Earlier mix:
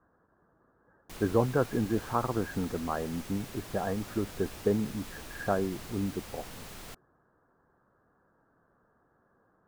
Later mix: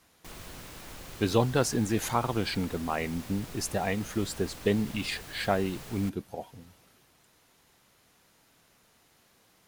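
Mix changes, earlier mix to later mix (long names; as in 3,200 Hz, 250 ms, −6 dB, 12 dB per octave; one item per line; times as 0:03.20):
speech: remove Chebyshev low-pass with heavy ripple 1,700 Hz, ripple 3 dB
background: entry −0.85 s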